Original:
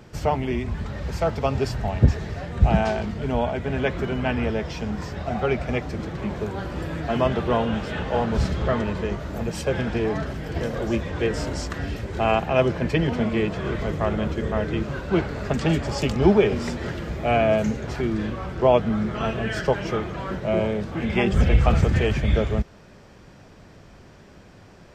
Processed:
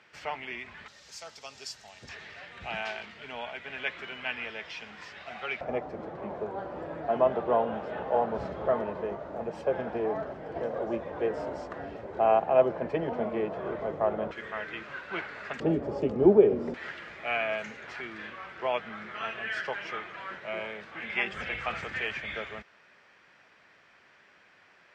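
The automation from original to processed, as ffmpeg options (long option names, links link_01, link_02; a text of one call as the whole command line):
ffmpeg -i in.wav -af "asetnsamples=nb_out_samples=441:pad=0,asendcmd='0.88 bandpass f 6100;2.09 bandpass f 2500;5.61 bandpass f 680;14.31 bandpass f 1900;15.6 bandpass f 410;16.74 bandpass f 2000',bandpass=frequency=2200:width_type=q:width=1.5:csg=0" out.wav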